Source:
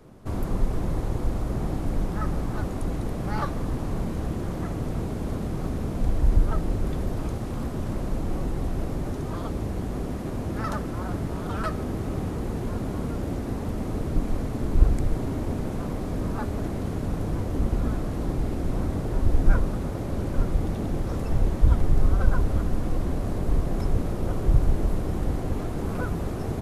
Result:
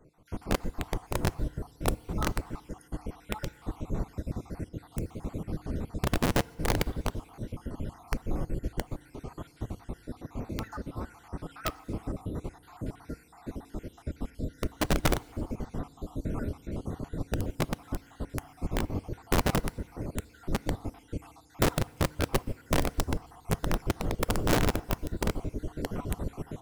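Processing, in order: random spectral dropouts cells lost 58%; notch 1700 Hz, Q 19; wrapped overs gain 17.5 dB; FDN reverb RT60 1.7 s, low-frequency decay 1×, high-frequency decay 0.8×, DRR 15.5 dB; upward expander 1.5:1, over -36 dBFS

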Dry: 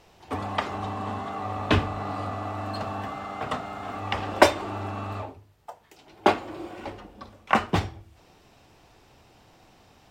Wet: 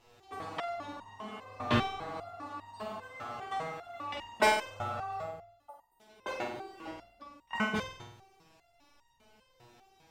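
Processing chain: 4.66–5.7 comb 1.5 ms, depth 55%; flutter echo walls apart 8.2 m, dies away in 0.7 s; 5.69–5.97 spectral repair 1500–8400 Hz before; stepped resonator 5 Hz 120–930 Hz; gain +4.5 dB

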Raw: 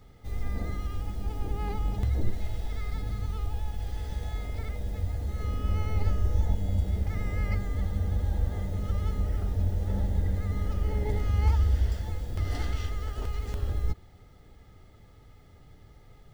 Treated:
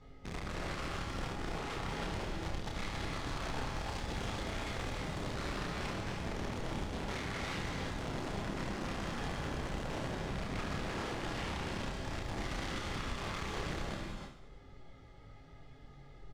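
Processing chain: notches 50/100/150/200/250/300/350/400/450 Hz; reverb removal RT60 0.82 s; bell 100 Hz -7.5 dB 0.27 oct; comb 7.3 ms, depth 33%; compressor 4:1, threshold -35 dBFS, peak gain reduction 15 dB; chorus 0.2 Hz, delay 19 ms, depth 7.3 ms; wrapped overs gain 39 dB; air absorption 87 m; reverse bouncing-ball echo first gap 30 ms, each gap 1.4×, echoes 5; non-linear reverb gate 0.35 s rising, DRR 1.5 dB; gain +2 dB

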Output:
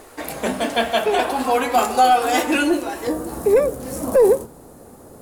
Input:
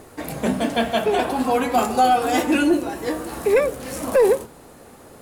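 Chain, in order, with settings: bell 130 Hz -12.5 dB 2.1 oct, from 3.07 s 2600 Hz; gain +3.5 dB

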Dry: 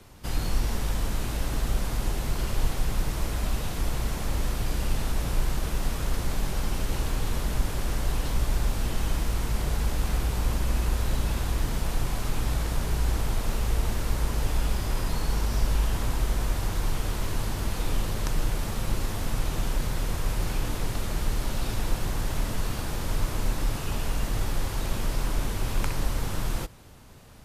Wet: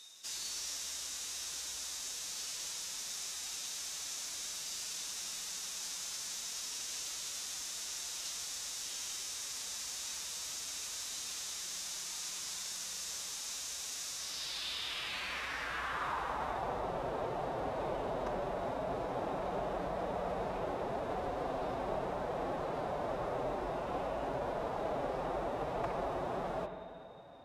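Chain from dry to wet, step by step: whine 3700 Hz -49 dBFS; band-pass sweep 6200 Hz -> 640 Hz, 14.13–16.81; spring tank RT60 2.1 s, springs 47/57 ms, chirp 35 ms, DRR 6 dB; formant-preserving pitch shift +3.5 st; gain +6.5 dB

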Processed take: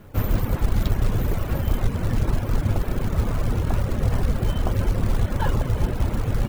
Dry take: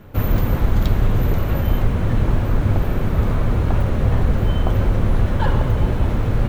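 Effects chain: thinning echo 0.355 s, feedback 60%, high-pass 160 Hz, level -18 dB; companded quantiser 6-bit; reverb removal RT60 0.62 s; gain -3 dB

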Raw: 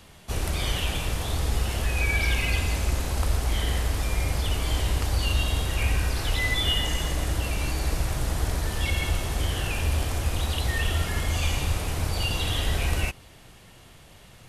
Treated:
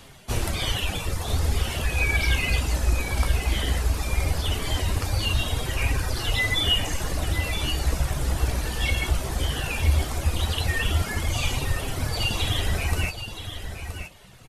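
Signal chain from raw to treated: reverb removal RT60 1.7 s; flange 0.17 Hz, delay 7.2 ms, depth 9.8 ms, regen +46%; echo 0.972 s -9.5 dB; gain +8 dB

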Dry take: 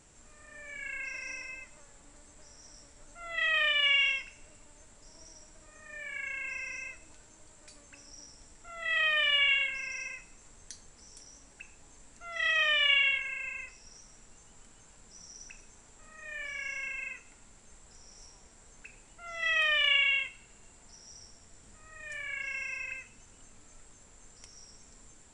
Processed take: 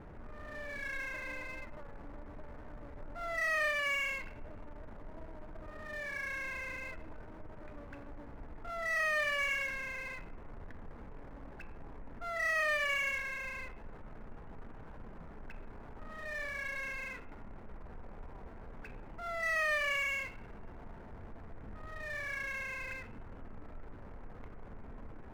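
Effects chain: Bessel low-pass 1200 Hz, order 8; power-law curve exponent 0.7; gain +2.5 dB

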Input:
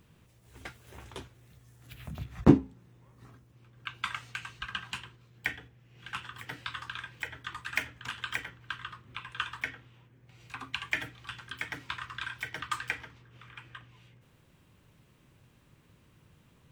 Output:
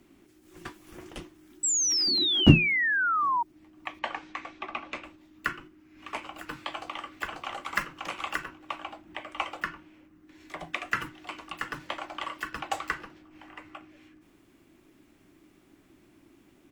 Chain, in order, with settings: frequency shift -430 Hz; 1.63–3.43 painted sound fall 920–7900 Hz -28 dBFS; 3.99–5.04 air absorption 140 m; 6.67–7.74 echo throw 0.54 s, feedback 10%, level -3 dB; gain +2.5 dB

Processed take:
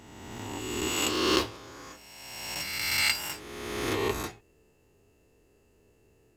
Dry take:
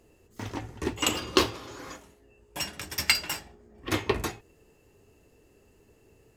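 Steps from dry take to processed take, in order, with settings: spectral swells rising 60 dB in 1.77 s; gain -7 dB

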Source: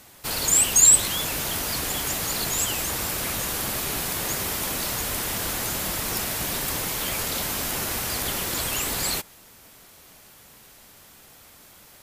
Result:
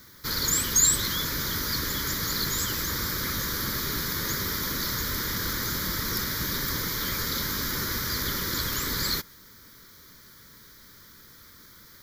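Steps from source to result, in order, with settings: fixed phaser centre 2700 Hz, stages 6; added noise violet -60 dBFS; gain +2 dB

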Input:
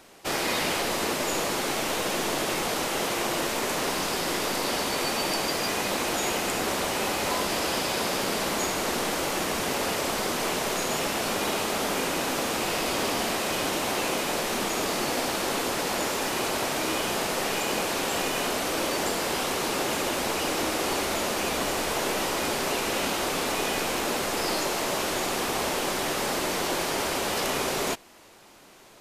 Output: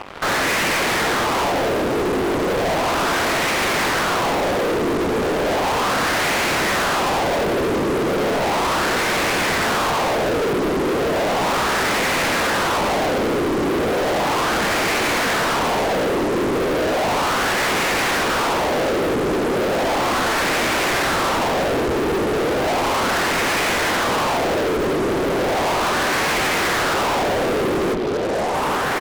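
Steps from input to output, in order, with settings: half-waves squared off; on a send: echo 1.138 s -10.5 dB; on the sum: harmoniser -4 st -5 dB, +5 st -5 dB, +12 st -1 dB; LFO low-pass sine 0.35 Hz 380–2300 Hz; fuzz box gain 35 dB, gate -40 dBFS; gain -5.5 dB

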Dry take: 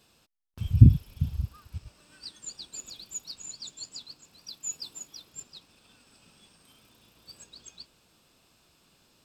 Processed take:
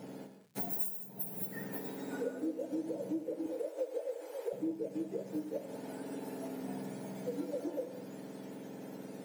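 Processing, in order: spectrum mirrored in octaves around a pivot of 1500 Hz; 3.46–4.53 steep high-pass 440 Hz 36 dB/oct; compressor 10:1, threshold -47 dBFS, peak gain reduction 29.5 dB; non-linear reverb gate 0.23 s flat, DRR 6.5 dB; crackle 270/s -70 dBFS; gain +12.5 dB

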